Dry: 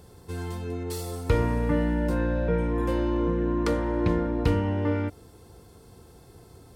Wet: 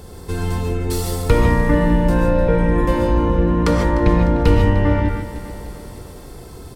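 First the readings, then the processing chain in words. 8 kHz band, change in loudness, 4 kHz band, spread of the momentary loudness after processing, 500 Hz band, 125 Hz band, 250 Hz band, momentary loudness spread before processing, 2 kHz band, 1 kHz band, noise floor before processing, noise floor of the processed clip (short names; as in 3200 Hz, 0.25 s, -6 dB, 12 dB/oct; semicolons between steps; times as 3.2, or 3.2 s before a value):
n/a, +9.5 dB, +10.0 dB, 16 LU, +8.5 dB, +10.0 dB, +8.0 dB, 8 LU, +10.5 dB, +11.0 dB, -52 dBFS, -37 dBFS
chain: octaver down 2 oct, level -3 dB; bell 150 Hz -2 dB; feedback echo 0.301 s, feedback 56%, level -16.5 dB; non-linear reverb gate 0.17 s rising, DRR 2.5 dB; in parallel at -2 dB: compressor, threshold -34 dBFS, peak gain reduction 17.5 dB; on the sum: gain +6.5 dB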